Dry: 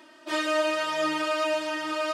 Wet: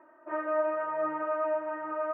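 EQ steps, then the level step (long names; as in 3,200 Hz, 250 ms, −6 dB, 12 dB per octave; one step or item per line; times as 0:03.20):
Bessel low-pass filter 890 Hz, order 8
spectral tilt +2.5 dB per octave
parametric band 230 Hz −8.5 dB 1.1 octaves
+2.0 dB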